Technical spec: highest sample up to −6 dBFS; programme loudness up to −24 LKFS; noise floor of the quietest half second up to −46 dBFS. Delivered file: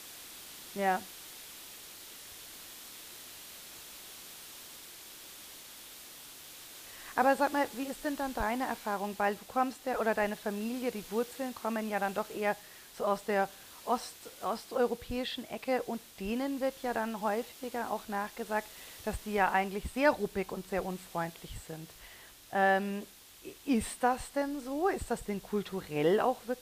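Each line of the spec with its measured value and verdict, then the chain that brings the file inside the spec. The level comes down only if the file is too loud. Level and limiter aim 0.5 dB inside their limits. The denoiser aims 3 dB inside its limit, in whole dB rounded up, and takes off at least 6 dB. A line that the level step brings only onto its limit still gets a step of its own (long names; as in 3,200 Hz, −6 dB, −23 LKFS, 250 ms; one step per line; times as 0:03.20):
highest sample −13.0 dBFS: in spec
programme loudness −33.5 LKFS: in spec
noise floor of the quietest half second −53 dBFS: in spec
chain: no processing needed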